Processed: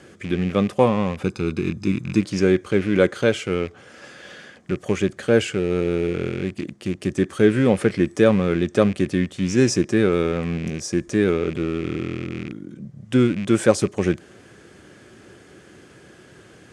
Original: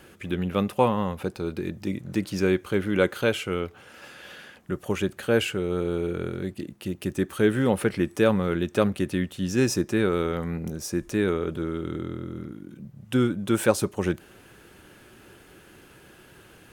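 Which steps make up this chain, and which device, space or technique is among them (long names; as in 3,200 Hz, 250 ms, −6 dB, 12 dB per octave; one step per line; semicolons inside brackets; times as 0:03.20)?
car door speaker with a rattle (loose part that buzzes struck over −34 dBFS, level −27 dBFS; loudspeaker in its box 81–8,300 Hz, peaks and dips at 900 Hz −7 dB, 1,400 Hz −4 dB, 2,700 Hz −7 dB, 3,900 Hz −4 dB)
0:01.23–0:02.21: comb filter 0.8 ms, depth 58%
level +5.5 dB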